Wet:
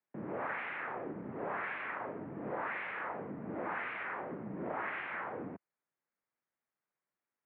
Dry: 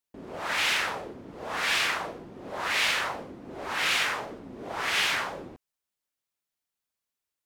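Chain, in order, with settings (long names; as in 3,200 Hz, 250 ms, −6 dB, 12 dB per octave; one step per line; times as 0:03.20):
downward compressor 6 to 1, threshold −37 dBFS, peak gain reduction 14 dB
single-sideband voice off tune −60 Hz 190–2,200 Hz
level +2 dB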